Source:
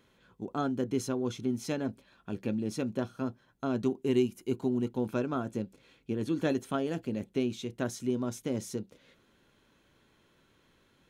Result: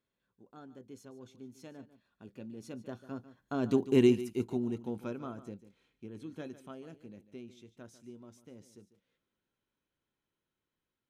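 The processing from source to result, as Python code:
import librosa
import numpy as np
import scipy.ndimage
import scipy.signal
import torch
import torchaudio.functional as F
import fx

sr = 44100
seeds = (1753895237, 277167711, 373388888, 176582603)

p1 = fx.doppler_pass(x, sr, speed_mps=11, closest_m=1.8, pass_at_s=3.93)
p2 = fx.rider(p1, sr, range_db=4, speed_s=0.5)
p3 = p1 + F.gain(torch.from_numpy(p2), 1.0).numpy()
y = p3 + 10.0 ** (-15.0 / 20.0) * np.pad(p3, (int(146 * sr / 1000.0), 0))[:len(p3)]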